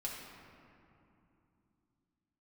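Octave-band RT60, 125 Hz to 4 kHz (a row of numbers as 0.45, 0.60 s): 4.1, 3.9, 3.0, 2.8, 2.2, 1.4 s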